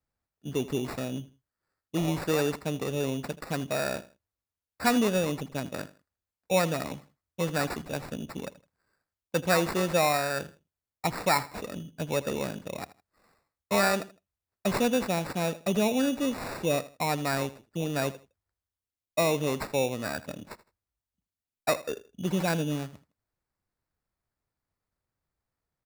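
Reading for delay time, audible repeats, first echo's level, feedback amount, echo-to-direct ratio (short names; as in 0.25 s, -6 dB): 80 ms, 2, -17.5 dB, 26%, -17.0 dB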